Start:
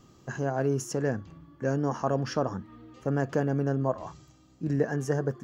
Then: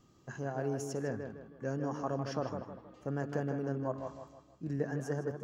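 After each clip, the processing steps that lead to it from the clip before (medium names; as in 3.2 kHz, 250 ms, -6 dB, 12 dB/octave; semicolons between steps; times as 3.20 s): tape echo 157 ms, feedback 43%, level -5 dB, low-pass 2.6 kHz; trim -8.5 dB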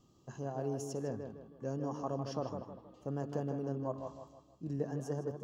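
high-order bell 1.8 kHz -9.5 dB 1 oct; trim -2 dB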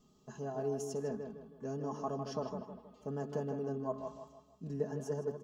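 comb 4.7 ms, depth 82%; trim -2 dB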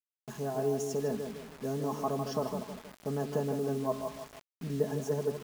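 bit crusher 9-bit; trim +5.5 dB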